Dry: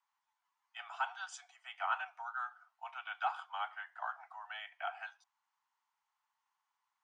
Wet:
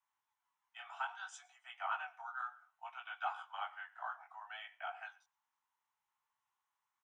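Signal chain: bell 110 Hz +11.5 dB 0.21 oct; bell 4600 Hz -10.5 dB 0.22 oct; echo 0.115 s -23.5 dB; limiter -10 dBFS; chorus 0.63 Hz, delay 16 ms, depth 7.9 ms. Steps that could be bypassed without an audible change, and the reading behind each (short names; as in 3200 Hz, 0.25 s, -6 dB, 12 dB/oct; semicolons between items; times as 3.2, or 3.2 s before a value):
bell 110 Hz: input band starts at 570 Hz; limiter -10 dBFS: input peak -22.5 dBFS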